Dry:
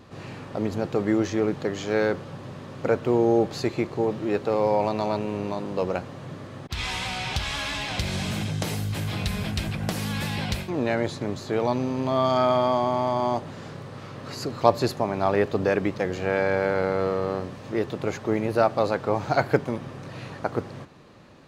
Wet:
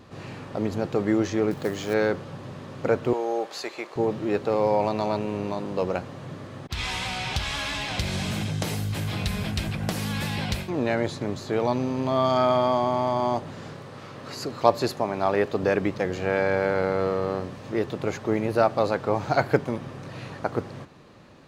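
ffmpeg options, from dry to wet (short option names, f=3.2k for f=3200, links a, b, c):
-filter_complex "[0:a]asettb=1/sr,asplit=3[a][b][c];[a]atrim=end=1.514[d];[b]atrim=start=1.51:end=1.94,asetpts=PTS-STARTPTS,afade=t=in:d=0.004:c=qsin,afade=t=out:st=0.426:d=0.004:c=qsin,acrusher=bits=5:mode=log:mix=0:aa=0.000001[e];[c]atrim=start=1.936[f];[d][e]acrossfade=d=0.004:c1=hsin:c2=qsin[g];[g][f]acrossfade=d=0.004:c1=qsin:c2=hsin,asettb=1/sr,asplit=3[h][i][j];[h]atrim=end=3.134[k];[i]atrim=start=3.13:end=3.96,asetpts=PTS-STARTPTS,afade=t=in:d=0.004:c=qsin,afade=t=out:st=0.826:d=0.004:c=qsin,highpass=620[l];[j]atrim=start=3.956[m];[k][l]acrossfade=d=0.004:c1=hsin:c2=qsin[n];[n][m]acrossfade=d=0.004:c1=qsin:c2=hsin,asettb=1/sr,asplit=3[o][p][q];[o]atrim=end=13.744[r];[p]atrim=start=13.74:end=15.63,asetpts=PTS-STARTPTS,afade=t=in:d=0.004:c=qsin,afade=t=out:st=1.886:d=0.004:c=qsin,lowshelf=f=150:g=-7.5[s];[q]atrim=start=15.626[t];[r][s]acrossfade=d=0.004:c1=hsin:c2=qsin[u];[u][t]acrossfade=d=0.004:c1=qsin:c2=hsin"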